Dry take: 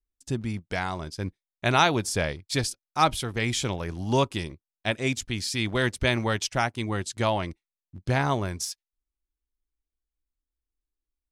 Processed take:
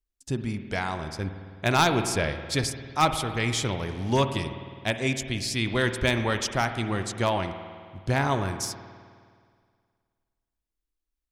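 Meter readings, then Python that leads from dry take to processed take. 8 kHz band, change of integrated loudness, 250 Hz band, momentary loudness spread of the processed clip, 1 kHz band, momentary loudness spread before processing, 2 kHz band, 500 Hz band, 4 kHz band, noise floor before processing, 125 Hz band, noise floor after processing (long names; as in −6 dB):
0.0 dB, 0.0 dB, +0.5 dB, 10 LU, 0.0 dB, 10 LU, +0.5 dB, +0.5 dB, 0.0 dB, below −85 dBFS, +0.5 dB, −85 dBFS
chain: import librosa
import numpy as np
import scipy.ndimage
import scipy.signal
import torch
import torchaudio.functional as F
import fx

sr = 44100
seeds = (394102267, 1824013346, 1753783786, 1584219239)

y = np.minimum(x, 2.0 * 10.0 ** (-14.0 / 20.0) - x)
y = fx.rev_spring(y, sr, rt60_s=2.0, pass_ms=(52,), chirp_ms=80, drr_db=8.0)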